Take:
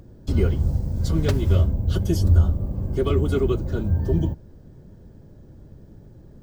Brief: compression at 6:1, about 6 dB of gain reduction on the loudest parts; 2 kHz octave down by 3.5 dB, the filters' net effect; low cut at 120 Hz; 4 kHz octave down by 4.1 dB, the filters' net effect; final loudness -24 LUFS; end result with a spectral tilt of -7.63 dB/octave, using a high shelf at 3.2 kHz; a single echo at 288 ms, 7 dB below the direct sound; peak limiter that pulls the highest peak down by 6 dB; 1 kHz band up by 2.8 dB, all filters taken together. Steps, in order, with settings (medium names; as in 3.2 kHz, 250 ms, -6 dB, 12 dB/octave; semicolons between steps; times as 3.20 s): high-pass 120 Hz; peaking EQ 1 kHz +6.5 dB; peaking EQ 2 kHz -9 dB; treble shelf 3.2 kHz +3.5 dB; peaking EQ 4 kHz -5.5 dB; compression 6:1, threshold -24 dBFS; peak limiter -21.5 dBFS; delay 288 ms -7 dB; trim +7 dB